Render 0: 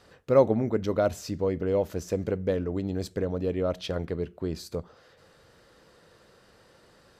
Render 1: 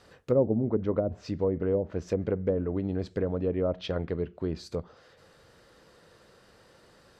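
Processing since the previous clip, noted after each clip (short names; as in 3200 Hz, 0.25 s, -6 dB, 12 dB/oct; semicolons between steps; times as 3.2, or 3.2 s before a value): treble ducked by the level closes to 430 Hz, closed at -20 dBFS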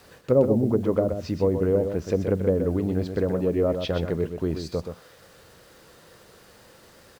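requantised 10-bit, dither none; wow and flutter 26 cents; echo 0.126 s -7.5 dB; gain +4.5 dB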